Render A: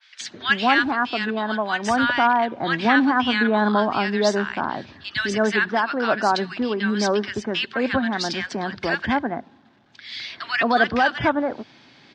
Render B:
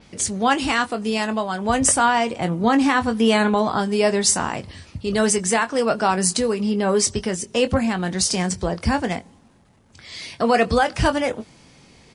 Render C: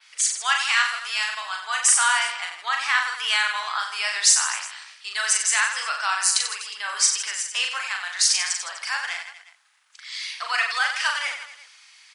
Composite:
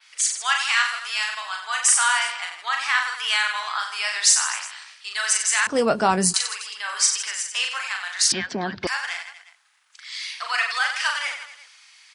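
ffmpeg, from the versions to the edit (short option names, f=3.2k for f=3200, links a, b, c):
-filter_complex "[2:a]asplit=3[a][b][c];[a]atrim=end=5.672[d];[1:a]atrim=start=5.668:end=6.342[e];[b]atrim=start=6.338:end=8.322[f];[0:a]atrim=start=8.318:end=8.872[g];[c]atrim=start=8.868[h];[d][e]acrossfade=d=0.004:c1=hsin:c2=hsin[i];[i][f]acrossfade=d=0.004:c1=hsin:c2=hsin[j];[j][g]acrossfade=d=0.004:c1=hsin:c2=hsin[k];[k][h]acrossfade=d=0.004:c1=hsin:c2=hsin"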